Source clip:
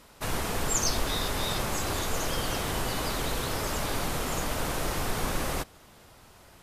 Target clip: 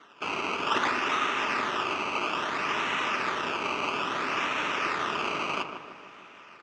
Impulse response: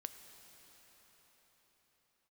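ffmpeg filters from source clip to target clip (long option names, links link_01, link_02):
-filter_complex "[0:a]acrusher=samples=17:mix=1:aa=0.000001:lfo=1:lforange=17:lforate=0.6,highpass=390,equalizer=frequency=510:width_type=q:width=4:gain=-10,equalizer=frequency=740:width_type=q:width=4:gain=-8,equalizer=frequency=1200:width_type=q:width=4:gain=7,equalizer=frequency=2600:width_type=q:width=4:gain=9,equalizer=frequency=4200:width_type=q:width=4:gain=-8,lowpass=frequency=5400:width=0.5412,lowpass=frequency=5400:width=1.3066,bandreject=frequency=1100:width=17,asplit=2[link_01][link_02];[link_02]adelay=153,lowpass=frequency=1600:poles=1,volume=-7dB,asplit=2[link_03][link_04];[link_04]adelay=153,lowpass=frequency=1600:poles=1,volume=0.54,asplit=2[link_05][link_06];[link_06]adelay=153,lowpass=frequency=1600:poles=1,volume=0.54,asplit=2[link_07][link_08];[link_08]adelay=153,lowpass=frequency=1600:poles=1,volume=0.54,asplit=2[link_09][link_10];[link_10]adelay=153,lowpass=frequency=1600:poles=1,volume=0.54,asplit=2[link_11][link_12];[link_12]adelay=153,lowpass=frequency=1600:poles=1,volume=0.54,asplit=2[link_13][link_14];[link_14]adelay=153,lowpass=frequency=1600:poles=1,volume=0.54[link_15];[link_01][link_03][link_05][link_07][link_09][link_11][link_13][link_15]amix=inputs=8:normalize=0,asplit=2[link_16][link_17];[1:a]atrim=start_sample=2205[link_18];[link_17][link_18]afir=irnorm=-1:irlink=0,volume=-1.5dB[link_19];[link_16][link_19]amix=inputs=2:normalize=0"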